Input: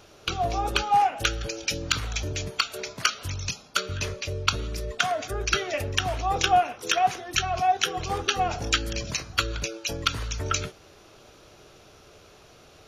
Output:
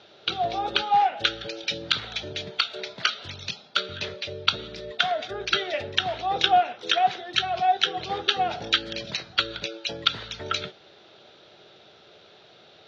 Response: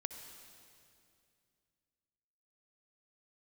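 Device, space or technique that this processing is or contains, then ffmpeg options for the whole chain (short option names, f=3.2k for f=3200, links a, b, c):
kitchen radio: -af "highpass=200,equalizer=f=280:t=q:w=4:g=-8,equalizer=f=470:t=q:w=4:g=-3,equalizer=f=1.1k:t=q:w=4:g=-9,equalizer=f=2.5k:t=q:w=4:g=-4,equalizer=f=3.7k:t=q:w=4:g=8,lowpass=f=4.2k:w=0.5412,lowpass=f=4.2k:w=1.3066,volume=2dB"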